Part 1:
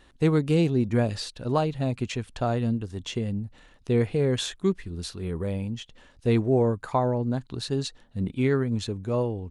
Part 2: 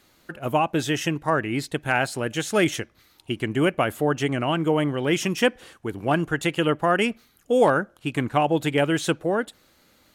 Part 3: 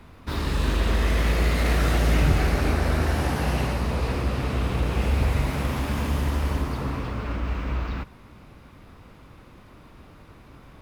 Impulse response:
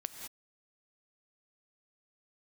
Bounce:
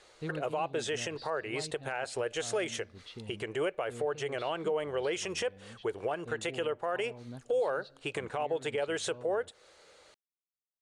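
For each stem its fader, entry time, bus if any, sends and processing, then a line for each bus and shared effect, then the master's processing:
-18.0 dB, 0.00 s, bus A, send -15.5 dB, resonant high shelf 5500 Hz -8 dB, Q 3
+0.5 dB, 0.00 s, bus A, no send, steep low-pass 9700 Hz 48 dB/oct; resonant low shelf 340 Hz -9.5 dB, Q 3
off
bus A: 0.0 dB, compressor 3:1, threshold -31 dBFS, peak gain reduction 17.5 dB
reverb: on, pre-delay 3 ms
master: limiter -23 dBFS, peak gain reduction 7.5 dB

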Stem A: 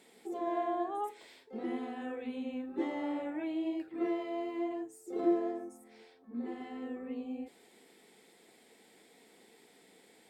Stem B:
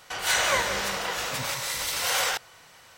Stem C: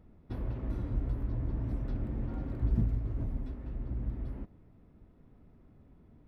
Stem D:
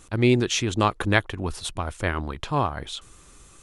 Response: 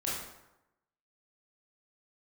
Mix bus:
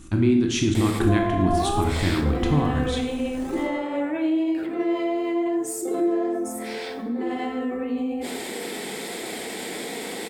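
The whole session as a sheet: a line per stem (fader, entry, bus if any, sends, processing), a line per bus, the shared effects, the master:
0.0 dB, 0.75 s, send -9 dB, fast leveller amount 70%
-15.5 dB, 1.30 s, no send, Chebyshev high-pass 2000 Hz; decimation with a swept rate 30×, swing 60% 1.6 Hz
off
-4.0 dB, 0.00 s, send -3 dB, resonant low shelf 390 Hz +7.5 dB, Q 3; compressor 6:1, threshold -19 dBFS, peak gain reduction 12.5 dB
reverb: on, RT60 0.90 s, pre-delay 18 ms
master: dry

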